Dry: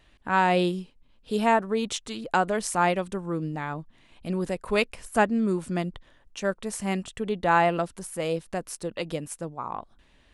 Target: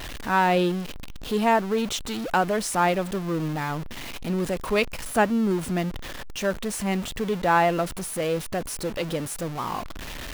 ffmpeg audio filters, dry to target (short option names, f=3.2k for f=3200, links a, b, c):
-af "aeval=exprs='val(0)+0.5*0.0335*sgn(val(0))':c=same,equalizer=f=8.3k:t=o:w=0.77:g=-3"